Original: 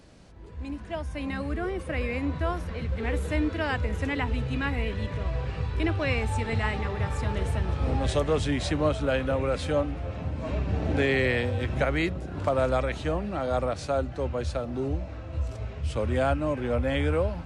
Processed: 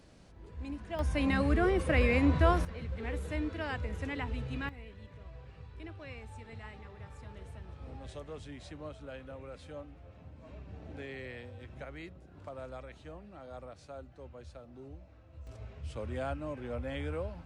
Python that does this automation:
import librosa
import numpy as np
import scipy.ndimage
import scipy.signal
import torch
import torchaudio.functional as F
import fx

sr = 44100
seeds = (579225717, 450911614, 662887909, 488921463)

y = fx.gain(x, sr, db=fx.steps((0.0, -5.0), (0.99, 3.0), (2.65, -8.5), (4.69, -19.5), (15.47, -11.5)))